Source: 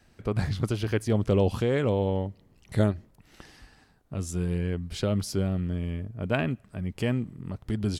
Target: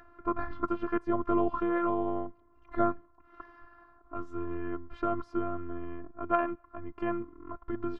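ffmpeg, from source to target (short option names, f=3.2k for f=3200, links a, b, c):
-af "lowpass=f=1.2k:t=q:w=9.5,afftfilt=real='hypot(re,im)*cos(PI*b)':imag='0':win_size=512:overlap=0.75,acompressor=mode=upward:threshold=-47dB:ratio=2.5"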